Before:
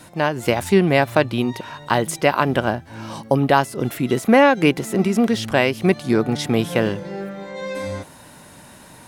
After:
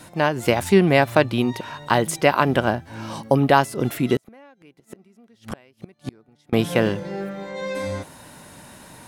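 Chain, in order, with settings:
0:04.16–0:06.53: gate with flip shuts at −15 dBFS, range −35 dB

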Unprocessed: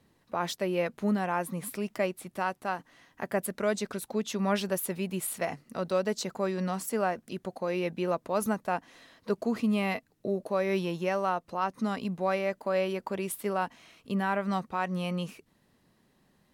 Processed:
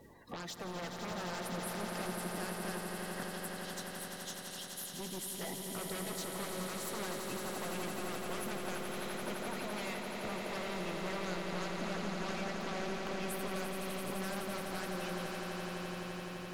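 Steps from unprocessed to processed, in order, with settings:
spectral magnitudes quantised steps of 30 dB
harmonic generator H 3 −19 dB, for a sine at −15.5 dBFS
in parallel at −5 dB: sine wavefolder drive 18 dB, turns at −15.5 dBFS
on the sum: downward compressor 4 to 1, threshold −40 dBFS, peak gain reduction 16.5 dB
0:03.23–0:04.94: elliptic high-pass filter 3,000 Hz
echo that builds up and dies away 85 ms, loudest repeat 8, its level −7.5 dB
level −5.5 dB

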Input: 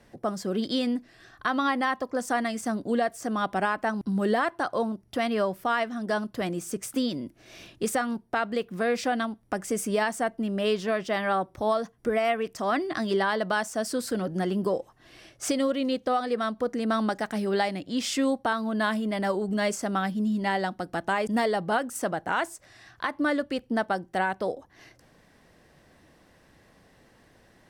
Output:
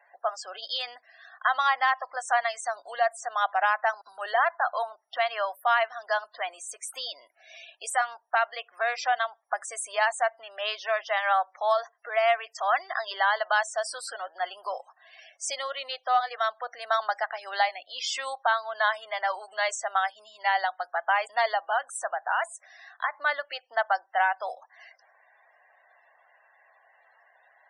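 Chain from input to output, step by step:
spectral peaks only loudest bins 64
0:21.57–0:23.14: downward compressor 1.5 to 1, threshold −30 dBFS, peak gain reduction 3.5 dB
elliptic high-pass filter 690 Hz, stop band 80 dB
level +4 dB

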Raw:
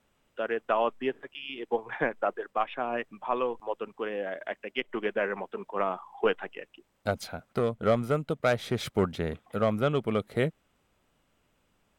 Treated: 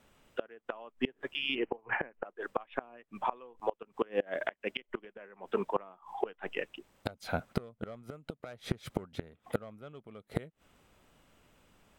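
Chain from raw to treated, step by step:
gate with flip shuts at −23 dBFS, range −28 dB
0:01.55–0:02.25: Chebyshev low-pass filter 3,000 Hz, order 8
level +6 dB

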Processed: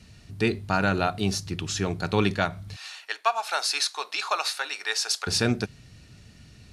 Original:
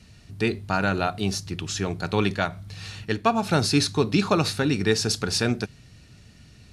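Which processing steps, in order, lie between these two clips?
0:02.76–0:05.27: high-pass filter 720 Hz 24 dB per octave

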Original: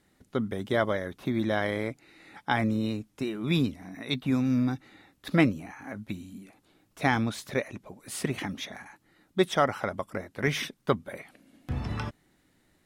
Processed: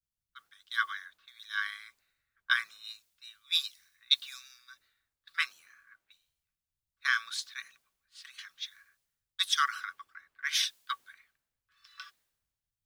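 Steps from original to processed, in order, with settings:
low-pass that shuts in the quiet parts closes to 1,500 Hz, open at −25 dBFS
Chebyshev high-pass with heavy ripple 1,100 Hz, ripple 9 dB
high-shelf EQ 2,400 Hz +10.5 dB
background noise white −65 dBFS
multiband upward and downward expander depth 100%
level −4.5 dB

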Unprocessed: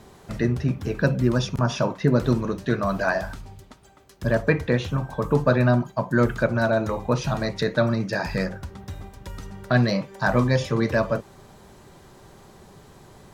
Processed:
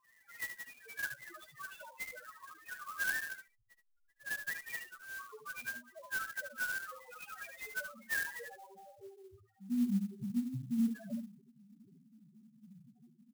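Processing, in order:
time-frequency cells dropped at random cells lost 33%
low-pass filter 4,800 Hz 12 dB per octave
parametric band 1,800 Hz +8 dB 0.95 octaves
hum removal 51.68 Hz, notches 8
downward compressor 8 to 1, threshold −22 dBFS, peak gain reduction 11 dB
band-pass filter sweep 2,100 Hz → 230 Hz, 0:07.85–0:09.59
0:03.47–0:05.85: slack as between gear wheels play −48 dBFS
spectral peaks only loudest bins 1
single-tap delay 74 ms −8 dB
converter with an unsteady clock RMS 0.038 ms
level +5.5 dB

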